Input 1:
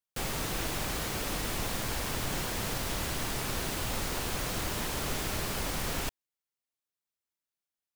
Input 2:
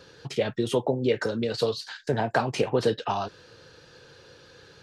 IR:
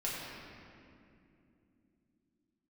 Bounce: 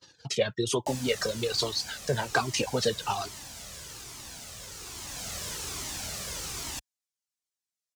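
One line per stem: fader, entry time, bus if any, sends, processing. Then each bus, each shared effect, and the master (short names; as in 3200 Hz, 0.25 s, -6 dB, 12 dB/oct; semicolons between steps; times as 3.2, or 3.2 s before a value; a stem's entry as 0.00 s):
-3.0 dB, 0.70 s, no send, auto duck -7 dB, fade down 1.70 s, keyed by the second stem
+2.5 dB, 0.00 s, no send, reverb removal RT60 0.93 s; gate -51 dBFS, range -30 dB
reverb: off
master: HPF 53 Hz; bell 6500 Hz +12 dB 1.7 oct; cascading flanger falling 1.2 Hz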